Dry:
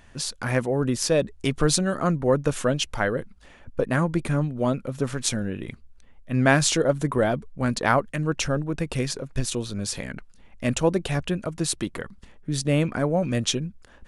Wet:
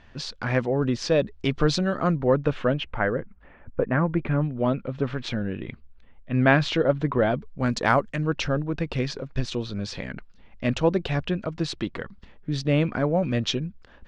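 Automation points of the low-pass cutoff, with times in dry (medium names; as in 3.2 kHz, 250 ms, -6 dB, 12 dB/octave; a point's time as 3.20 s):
low-pass 24 dB/octave
2.16 s 4.9 kHz
3.11 s 2.2 kHz
3.93 s 2.2 kHz
4.75 s 3.7 kHz
7.20 s 3.7 kHz
8.00 s 8.8 kHz
8.27 s 4.8 kHz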